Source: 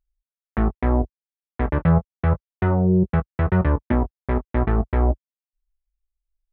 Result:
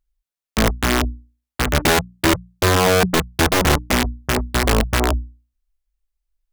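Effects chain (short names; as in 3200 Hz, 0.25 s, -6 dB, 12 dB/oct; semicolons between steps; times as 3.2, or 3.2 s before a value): notches 60/120/180/240/300 Hz; wrapped overs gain 14 dB; gain +4.5 dB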